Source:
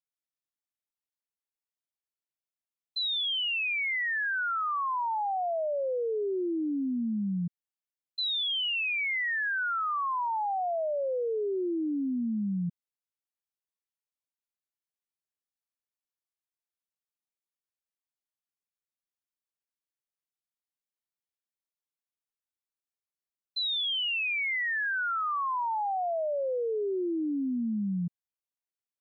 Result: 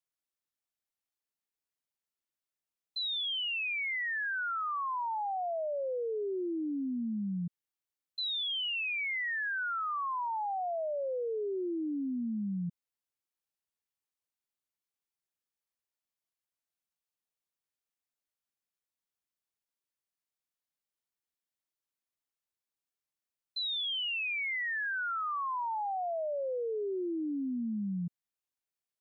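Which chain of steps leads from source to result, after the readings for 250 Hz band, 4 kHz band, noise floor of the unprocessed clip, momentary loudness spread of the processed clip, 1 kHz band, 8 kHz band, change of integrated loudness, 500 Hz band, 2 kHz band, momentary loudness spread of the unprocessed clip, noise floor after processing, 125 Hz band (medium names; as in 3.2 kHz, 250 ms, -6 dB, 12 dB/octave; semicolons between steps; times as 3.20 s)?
-4.0 dB, -4.0 dB, under -85 dBFS, 4 LU, -4.0 dB, no reading, -4.0 dB, -4.0 dB, -4.0 dB, 4 LU, under -85 dBFS, -4.0 dB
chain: peak limiter -31 dBFS, peak gain reduction 4 dB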